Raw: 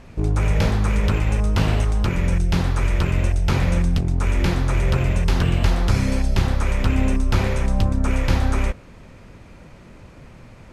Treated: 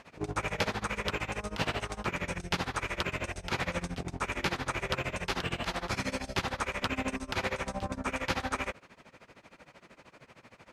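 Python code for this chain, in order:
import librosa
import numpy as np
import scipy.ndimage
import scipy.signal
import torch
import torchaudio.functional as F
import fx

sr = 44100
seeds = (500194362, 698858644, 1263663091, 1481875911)

p1 = fx.highpass(x, sr, hz=790.0, slope=6)
p2 = fx.high_shelf(p1, sr, hz=7200.0, db=-8.5)
p3 = fx.rider(p2, sr, range_db=10, speed_s=0.5)
p4 = p2 + (p3 * 10.0 ** (-3.0 / 20.0))
p5 = p4 * (1.0 - 0.91 / 2.0 + 0.91 / 2.0 * np.cos(2.0 * np.pi * 13.0 * (np.arange(len(p4)) / sr)))
y = p5 * 10.0 ** (-3.0 / 20.0)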